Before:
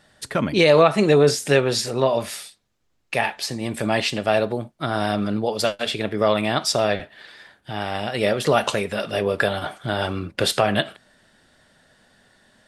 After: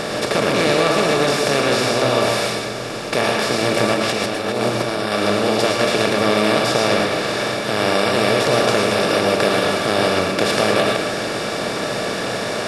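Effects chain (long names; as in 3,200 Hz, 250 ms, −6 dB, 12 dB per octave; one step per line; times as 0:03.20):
compressor on every frequency bin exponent 0.2
0:03.94–0:05.12: compressor whose output falls as the input rises −13 dBFS, ratio −0.5
convolution reverb RT60 0.45 s, pre-delay 101 ms, DRR 2.5 dB
level −9 dB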